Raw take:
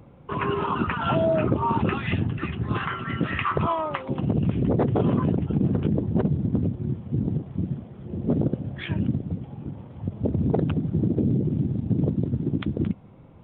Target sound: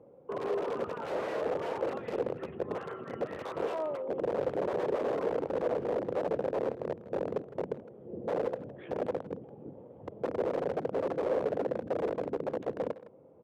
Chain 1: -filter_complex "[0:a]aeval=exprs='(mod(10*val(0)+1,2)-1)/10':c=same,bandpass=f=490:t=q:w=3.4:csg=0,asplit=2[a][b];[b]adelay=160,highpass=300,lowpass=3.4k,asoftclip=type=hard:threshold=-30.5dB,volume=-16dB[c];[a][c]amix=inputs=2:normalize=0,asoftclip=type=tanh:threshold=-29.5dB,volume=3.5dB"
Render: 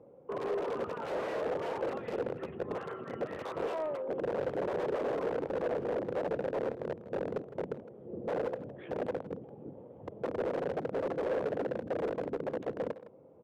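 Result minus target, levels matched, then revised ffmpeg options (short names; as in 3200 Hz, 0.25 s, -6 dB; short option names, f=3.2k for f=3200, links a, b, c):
soft clip: distortion +11 dB
-filter_complex "[0:a]aeval=exprs='(mod(10*val(0)+1,2)-1)/10':c=same,bandpass=f=490:t=q:w=3.4:csg=0,asplit=2[a][b];[b]adelay=160,highpass=300,lowpass=3.4k,asoftclip=type=hard:threshold=-30.5dB,volume=-16dB[c];[a][c]amix=inputs=2:normalize=0,asoftclip=type=tanh:threshold=-22dB,volume=3.5dB"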